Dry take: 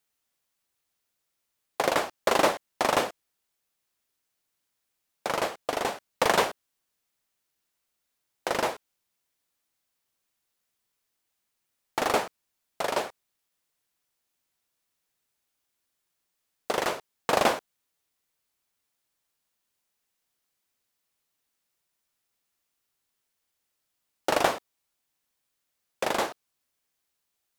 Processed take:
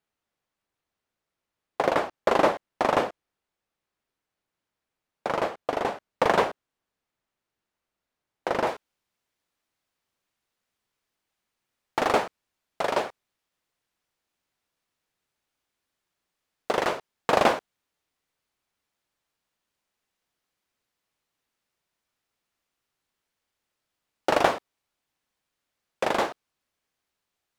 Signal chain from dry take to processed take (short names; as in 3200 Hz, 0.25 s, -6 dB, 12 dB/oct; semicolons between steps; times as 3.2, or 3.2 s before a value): LPF 1500 Hz 6 dB/oct, from 8.67 s 3200 Hz; gain +3 dB